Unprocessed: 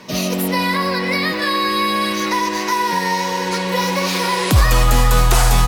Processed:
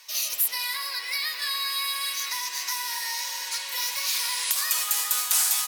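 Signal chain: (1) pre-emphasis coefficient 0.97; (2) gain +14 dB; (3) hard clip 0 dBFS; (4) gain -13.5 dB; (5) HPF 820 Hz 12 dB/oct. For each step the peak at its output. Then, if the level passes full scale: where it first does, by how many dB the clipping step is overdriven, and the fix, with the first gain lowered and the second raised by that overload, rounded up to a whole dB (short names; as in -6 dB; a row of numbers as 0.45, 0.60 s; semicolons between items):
-5.0, +9.0, 0.0, -13.5, -11.5 dBFS; step 2, 9.0 dB; step 2 +5 dB, step 4 -4.5 dB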